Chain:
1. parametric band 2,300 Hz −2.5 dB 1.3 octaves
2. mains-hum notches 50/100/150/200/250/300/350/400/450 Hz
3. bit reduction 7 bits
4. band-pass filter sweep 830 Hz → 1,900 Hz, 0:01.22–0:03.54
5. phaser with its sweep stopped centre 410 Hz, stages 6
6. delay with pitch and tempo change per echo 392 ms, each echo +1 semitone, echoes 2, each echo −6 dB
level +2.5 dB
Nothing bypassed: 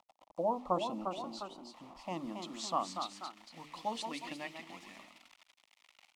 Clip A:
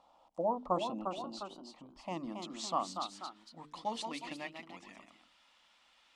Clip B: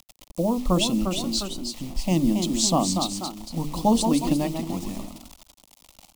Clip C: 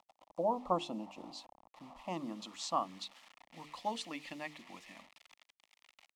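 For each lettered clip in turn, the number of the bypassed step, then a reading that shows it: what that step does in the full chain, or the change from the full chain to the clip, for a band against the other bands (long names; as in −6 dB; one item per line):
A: 3, distortion level −22 dB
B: 4, 2 kHz band −11.5 dB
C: 6, change in momentary loudness spread +4 LU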